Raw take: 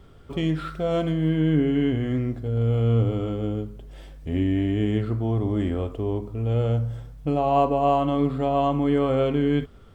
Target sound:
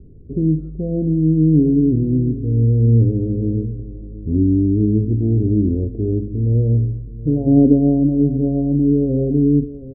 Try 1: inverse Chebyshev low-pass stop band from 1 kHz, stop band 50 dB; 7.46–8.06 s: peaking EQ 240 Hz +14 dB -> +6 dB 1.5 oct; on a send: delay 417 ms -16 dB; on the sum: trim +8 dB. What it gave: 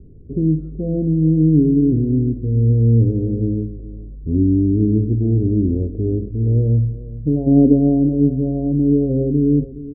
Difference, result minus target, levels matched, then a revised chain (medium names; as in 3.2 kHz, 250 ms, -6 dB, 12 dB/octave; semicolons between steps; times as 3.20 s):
echo 306 ms early
inverse Chebyshev low-pass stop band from 1 kHz, stop band 50 dB; 7.46–8.06 s: peaking EQ 240 Hz +14 dB -> +6 dB 1.5 oct; on a send: delay 723 ms -16 dB; on the sum: trim +8 dB